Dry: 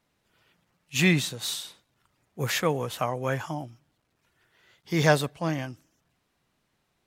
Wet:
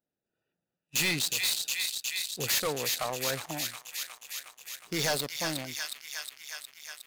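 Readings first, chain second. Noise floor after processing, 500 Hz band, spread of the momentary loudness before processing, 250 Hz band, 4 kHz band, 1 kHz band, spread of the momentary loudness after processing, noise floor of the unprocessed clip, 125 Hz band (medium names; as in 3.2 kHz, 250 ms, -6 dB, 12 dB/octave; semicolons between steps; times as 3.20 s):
under -85 dBFS, -7.0 dB, 14 LU, -10.5 dB, +3.5 dB, -6.0 dB, 13 LU, -75 dBFS, -12.5 dB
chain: local Wiener filter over 41 samples; in parallel at -2 dB: compression, threshold -35 dBFS, peak gain reduction 19 dB; on the sum: RIAA curve recording; on a send: feedback echo behind a high-pass 362 ms, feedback 75%, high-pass 1.9 kHz, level -8 dB; on the sum: overload inside the chain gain 19.5 dB; dynamic bell 4.4 kHz, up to +6 dB, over -45 dBFS, Q 2.8; waveshaping leveller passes 2; trim -8 dB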